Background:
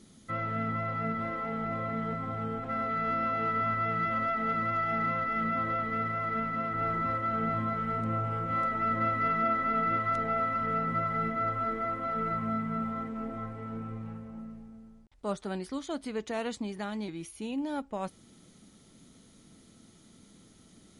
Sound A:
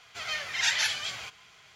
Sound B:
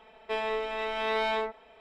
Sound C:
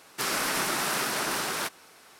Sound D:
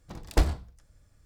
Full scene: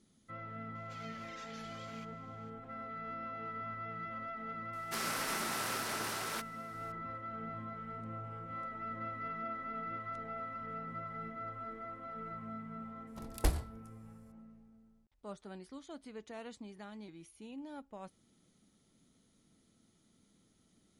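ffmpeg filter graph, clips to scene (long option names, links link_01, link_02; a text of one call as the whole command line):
ffmpeg -i bed.wav -i cue0.wav -i cue1.wav -i cue2.wav -i cue3.wav -filter_complex "[0:a]volume=-13dB[link_01];[1:a]acompressor=threshold=-36dB:ratio=6:attack=3.2:release=140:knee=1:detection=peak[link_02];[3:a]acontrast=65[link_03];[4:a]equalizer=frequency=11000:width=1.6:gain=14.5[link_04];[link_02]atrim=end=1.75,asetpts=PTS-STARTPTS,volume=-15.5dB,afade=type=in:duration=0.004:curve=hsin,afade=type=out:start_time=1.746:duration=0.004:curve=hsin,adelay=750[link_05];[link_03]atrim=end=2.19,asetpts=PTS-STARTPTS,volume=-16dB,afade=type=in:duration=0.004:curve=hsin,afade=type=out:start_time=2.186:duration=0.004:curve=hsin,adelay=208593S[link_06];[link_04]atrim=end=1.25,asetpts=PTS-STARTPTS,volume=-8dB,afade=type=in:duration=0.004:curve=hsin,afade=type=out:start_time=1.246:duration=0.004:curve=hsin,adelay=13070[link_07];[link_01][link_05][link_06][link_07]amix=inputs=4:normalize=0" out.wav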